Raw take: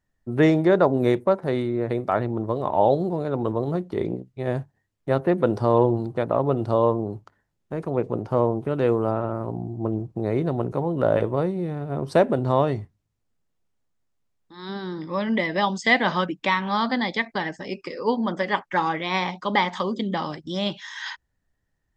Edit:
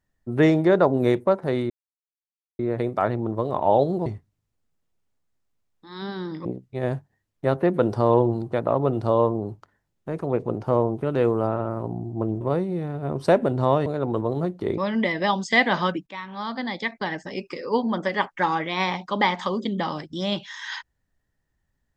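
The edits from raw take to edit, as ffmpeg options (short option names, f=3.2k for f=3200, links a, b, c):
-filter_complex "[0:a]asplit=8[a][b][c][d][e][f][g][h];[a]atrim=end=1.7,asetpts=PTS-STARTPTS,afade=t=out:st=1.696:d=0.004:c=hsin,apad=pad_dur=0.89[i];[b]atrim=start=1.7:end=3.172,asetpts=PTS-STARTPTS,afade=t=in:d=0.004:c=hsin[j];[c]atrim=start=12.728:end=15.122[k];[d]atrim=start=4.088:end=10.052[l];[e]atrim=start=11.278:end=12.732[m];[f]atrim=start=3.168:end=4.092[n];[g]atrim=start=15.118:end=16.41,asetpts=PTS-STARTPTS,afade=t=out:st=1.288:d=0.004:c=hsin:silence=0.133352[o];[h]atrim=start=16.41,asetpts=PTS-STARTPTS,afade=t=in:d=1.17:silence=0.133352[p];[i][j]concat=n=2:v=0:a=1[q];[q][k]acrossfade=d=0.004:c1=hsin:c2=hsin[r];[r][l]acrossfade=d=0.004:c1=hsin:c2=hsin[s];[s][m]acrossfade=d=0.004:c1=hsin:c2=hsin[t];[t][n]acrossfade=d=0.004:c1=hsin:c2=hsin[u];[o][p]concat=n=2:v=0:a=1[v];[u][v]acrossfade=d=0.004:c1=hsin:c2=hsin"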